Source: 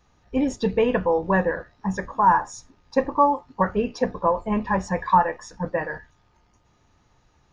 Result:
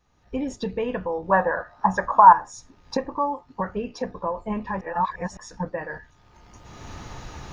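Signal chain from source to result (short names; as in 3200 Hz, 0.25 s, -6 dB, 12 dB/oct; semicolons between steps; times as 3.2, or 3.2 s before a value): recorder AGC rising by 26 dB/s; 1.31–2.33 band shelf 960 Hz +13.5 dB; 4.81–5.37 reverse; gain -7 dB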